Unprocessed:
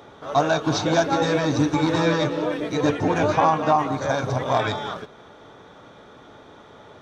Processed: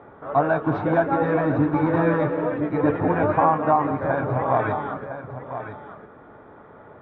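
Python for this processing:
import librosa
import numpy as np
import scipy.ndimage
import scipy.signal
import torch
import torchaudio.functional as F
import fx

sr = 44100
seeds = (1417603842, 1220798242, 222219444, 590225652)

y = scipy.signal.sosfilt(scipy.signal.butter(4, 1900.0, 'lowpass', fs=sr, output='sos'), x)
y = y + 10.0 ** (-10.5 / 20.0) * np.pad(y, (int(1006 * sr / 1000.0), 0))[:len(y)]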